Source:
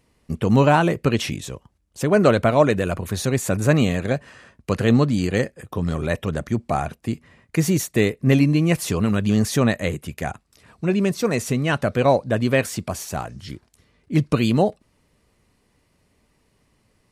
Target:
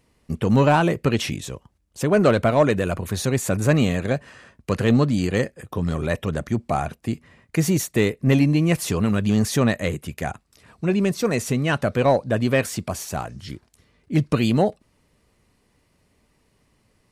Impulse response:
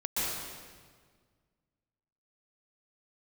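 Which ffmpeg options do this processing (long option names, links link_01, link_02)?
-af "acontrast=37,volume=-5.5dB"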